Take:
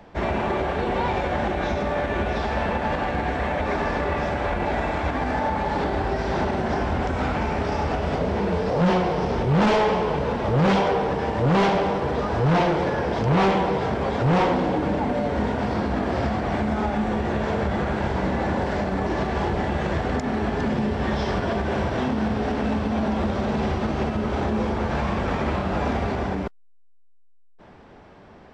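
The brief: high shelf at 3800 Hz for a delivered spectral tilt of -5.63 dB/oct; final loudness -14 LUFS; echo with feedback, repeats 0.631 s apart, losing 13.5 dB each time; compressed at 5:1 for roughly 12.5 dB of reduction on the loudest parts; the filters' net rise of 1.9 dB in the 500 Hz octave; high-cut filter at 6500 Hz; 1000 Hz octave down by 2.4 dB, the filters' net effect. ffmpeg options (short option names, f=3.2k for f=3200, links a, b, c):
-af "lowpass=6.5k,equalizer=f=500:t=o:g=3.5,equalizer=f=1k:t=o:g=-5,highshelf=f=3.8k:g=4.5,acompressor=threshold=-31dB:ratio=5,aecho=1:1:631|1262:0.211|0.0444,volume=19.5dB"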